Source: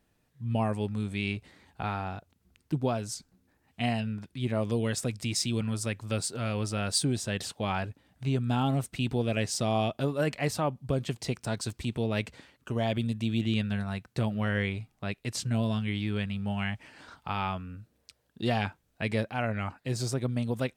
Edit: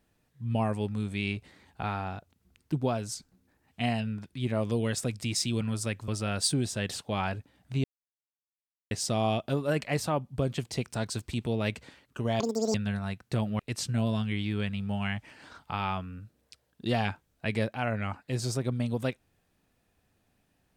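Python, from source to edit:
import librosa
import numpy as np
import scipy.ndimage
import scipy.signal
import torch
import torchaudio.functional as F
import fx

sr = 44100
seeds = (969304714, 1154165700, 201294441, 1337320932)

y = fx.edit(x, sr, fx.cut(start_s=6.08, length_s=0.51),
    fx.silence(start_s=8.35, length_s=1.07),
    fx.speed_span(start_s=12.91, length_s=0.68, speed=1.98),
    fx.cut(start_s=14.44, length_s=0.72), tone=tone)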